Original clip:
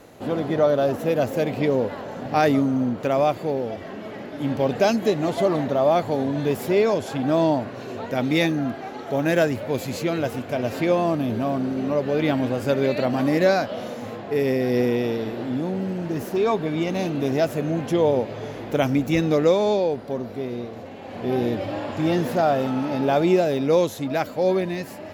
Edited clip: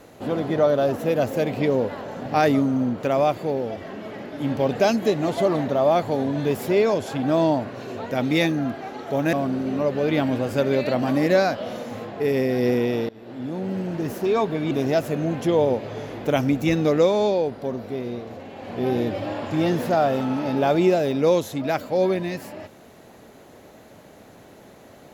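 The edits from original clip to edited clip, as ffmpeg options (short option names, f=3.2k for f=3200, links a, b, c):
-filter_complex "[0:a]asplit=4[a][b][c][d];[a]atrim=end=9.332[e];[b]atrim=start=11.438:end=15.2,asetpts=PTS-STARTPTS,afade=t=out:st=3.758:d=0.004:c=hsin:silence=0.0630957[f];[c]atrim=start=15.2:end=16.822,asetpts=PTS-STARTPTS,afade=t=in:d=0.68:silence=0.0630957[g];[d]atrim=start=17.168[h];[f][g]concat=n=2:v=0:a=1[i];[e][i]acrossfade=d=0.004:c1=hsin:c2=hsin[j];[j][h]acrossfade=d=0.004:c1=hsin:c2=hsin"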